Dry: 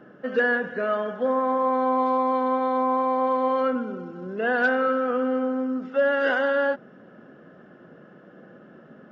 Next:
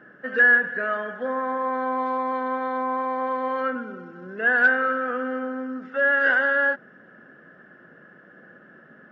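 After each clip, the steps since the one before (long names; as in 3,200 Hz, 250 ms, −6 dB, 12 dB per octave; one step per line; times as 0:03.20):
parametric band 1,700 Hz +14 dB 0.67 octaves
level −5 dB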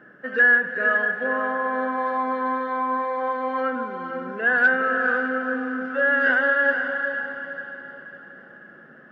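feedback delay with all-pass diffusion 486 ms, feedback 42%, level −6 dB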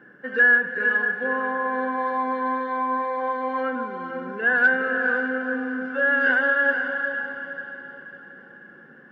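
notch comb filter 640 Hz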